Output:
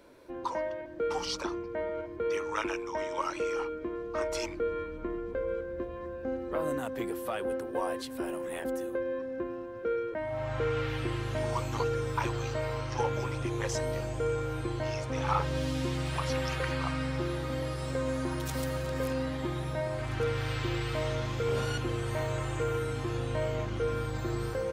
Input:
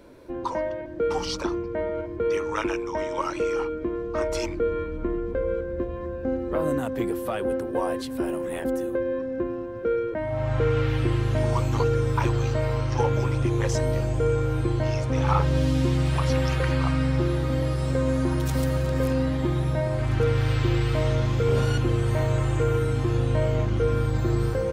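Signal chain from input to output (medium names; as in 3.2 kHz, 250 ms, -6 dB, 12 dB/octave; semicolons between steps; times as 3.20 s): bass shelf 370 Hz -9 dB; trim -3 dB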